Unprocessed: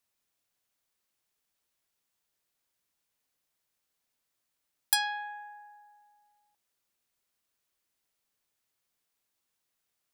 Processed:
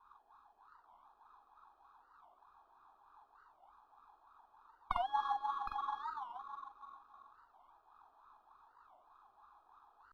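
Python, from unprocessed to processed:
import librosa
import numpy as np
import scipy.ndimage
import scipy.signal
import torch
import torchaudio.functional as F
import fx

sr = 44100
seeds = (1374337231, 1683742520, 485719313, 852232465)

p1 = fx.bin_compress(x, sr, power=0.6)
p2 = fx.high_shelf(p1, sr, hz=7900.0, db=5.5)
p3 = fx.formant_shift(p2, sr, semitones=5)
p4 = fx.wah_lfo(p3, sr, hz=3.3, low_hz=580.0, high_hz=1300.0, q=11.0)
p5 = fx.sample_hold(p4, sr, seeds[0], rate_hz=2500.0, jitter_pct=0)
p6 = p4 + F.gain(torch.from_numpy(p5), -6.0).numpy()
p7 = fx.air_absorb(p6, sr, metres=360.0)
p8 = fx.fixed_phaser(p7, sr, hz=570.0, stages=6)
p9 = fx.doubler(p8, sr, ms=44.0, db=-2)
p10 = p9 + 10.0 ** (-8.0 / 20.0) * np.pad(p9, (int(746 * sr / 1000.0), 0))[:len(p9)]
p11 = fx.record_warp(p10, sr, rpm=45.0, depth_cents=250.0)
y = F.gain(torch.from_numpy(p11), 17.5).numpy()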